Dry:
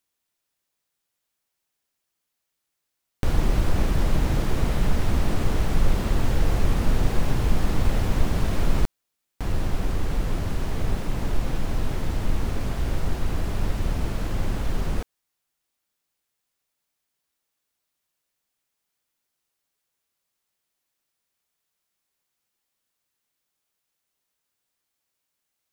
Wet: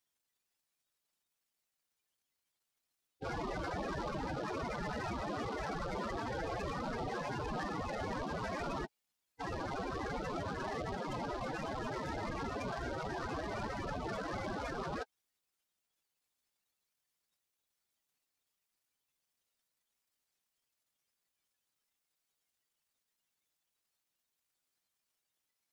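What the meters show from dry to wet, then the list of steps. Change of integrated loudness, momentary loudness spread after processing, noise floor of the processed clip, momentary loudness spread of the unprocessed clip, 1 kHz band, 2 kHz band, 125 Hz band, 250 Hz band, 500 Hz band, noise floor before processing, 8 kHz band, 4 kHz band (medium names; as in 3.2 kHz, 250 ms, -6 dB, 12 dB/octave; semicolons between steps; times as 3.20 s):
-12.5 dB, 2 LU, under -85 dBFS, 5 LU, -3.5 dB, -6.0 dB, -19.0 dB, -11.5 dB, -6.0 dB, -81 dBFS, -14.5 dB, -11.0 dB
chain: high-pass 1.4 kHz 6 dB/octave; loudest bins only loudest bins 16; peak limiter -42 dBFS, peak gain reduction 9.5 dB; delay time shaken by noise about 3 kHz, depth 0.032 ms; trim +11 dB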